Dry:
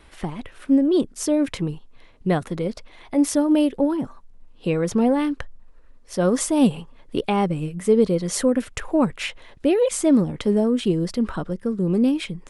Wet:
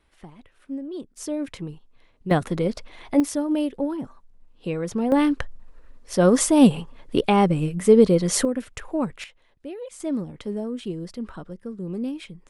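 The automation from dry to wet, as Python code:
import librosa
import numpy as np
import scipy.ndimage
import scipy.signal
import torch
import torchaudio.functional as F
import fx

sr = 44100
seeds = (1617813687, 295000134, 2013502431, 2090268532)

y = fx.gain(x, sr, db=fx.steps((0.0, -15.0), (1.17, -8.0), (2.31, 2.0), (3.2, -5.5), (5.12, 3.0), (8.45, -6.0), (9.24, -17.0), (10.0, -10.0)))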